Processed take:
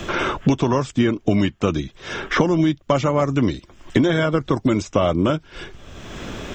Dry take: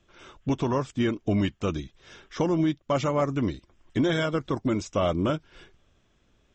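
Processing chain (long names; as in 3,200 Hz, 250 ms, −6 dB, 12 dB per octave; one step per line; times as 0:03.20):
multiband upward and downward compressor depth 100%
level +6.5 dB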